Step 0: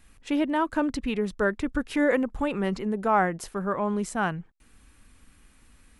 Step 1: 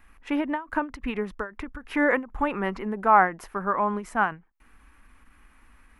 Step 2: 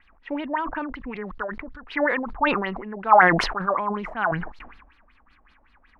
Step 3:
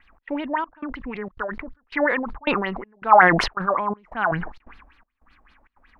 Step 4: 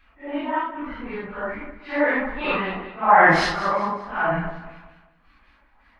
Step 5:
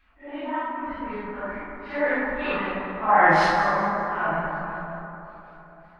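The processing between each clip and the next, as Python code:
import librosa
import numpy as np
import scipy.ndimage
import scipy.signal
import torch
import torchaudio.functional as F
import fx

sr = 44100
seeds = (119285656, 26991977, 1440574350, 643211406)

y1 = fx.graphic_eq(x, sr, hz=(125, 500, 1000, 2000, 4000, 8000), db=(-12, -4, 6, 4, -8, -12))
y1 = fx.end_taper(y1, sr, db_per_s=190.0)
y1 = y1 * 10.0 ** (2.0 / 20.0)
y2 = fx.filter_lfo_lowpass(y1, sr, shape='sine', hz=5.3, low_hz=610.0, high_hz=4500.0, q=6.7)
y2 = fx.sustainer(y2, sr, db_per_s=54.0)
y2 = y2 * 10.0 ** (-6.0 / 20.0)
y3 = fx.step_gate(y2, sr, bpm=164, pattern='xx.xxxx..xxx', floor_db=-24.0, edge_ms=4.5)
y3 = y3 * 10.0 ** (1.5 / 20.0)
y4 = fx.phase_scramble(y3, sr, seeds[0], window_ms=200)
y4 = fx.echo_feedback(y4, sr, ms=194, feedback_pct=37, wet_db=-13.0)
y5 = fx.rev_plate(y4, sr, seeds[1], rt60_s=3.7, hf_ratio=0.3, predelay_ms=0, drr_db=0.0)
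y5 = y5 * 10.0 ** (-5.5 / 20.0)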